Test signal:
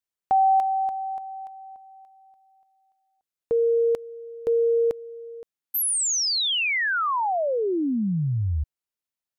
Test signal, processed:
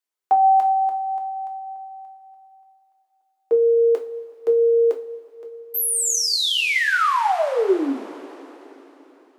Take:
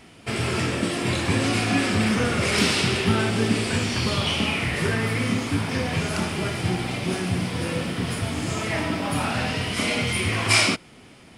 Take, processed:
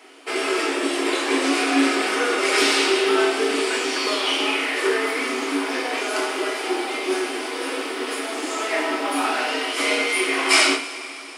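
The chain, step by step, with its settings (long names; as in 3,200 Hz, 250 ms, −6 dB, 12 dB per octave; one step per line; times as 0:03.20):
Chebyshev high-pass with heavy ripple 270 Hz, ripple 3 dB
coupled-rooms reverb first 0.31 s, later 3.8 s, from −19 dB, DRR 1 dB
level +3 dB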